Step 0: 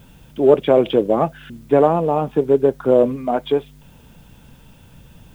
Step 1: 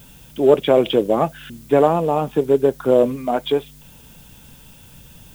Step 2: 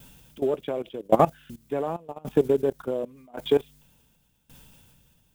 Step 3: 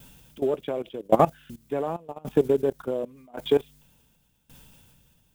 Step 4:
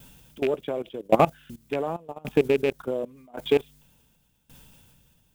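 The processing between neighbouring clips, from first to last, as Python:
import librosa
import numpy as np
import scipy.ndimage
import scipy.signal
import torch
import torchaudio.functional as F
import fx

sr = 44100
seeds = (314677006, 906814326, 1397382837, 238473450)

y1 = fx.high_shelf(x, sr, hz=3300.0, db=12.0)
y1 = y1 * 10.0 ** (-1.0 / 20.0)
y2 = fx.level_steps(y1, sr, step_db=18)
y2 = fx.tremolo_decay(y2, sr, direction='decaying', hz=0.89, depth_db=23)
y2 = y2 * 10.0 ** (5.0 / 20.0)
y3 = y2
y4 = fx.rattle_buzz(y3, sr, strikes_db=-30.0, level_db=-20.0)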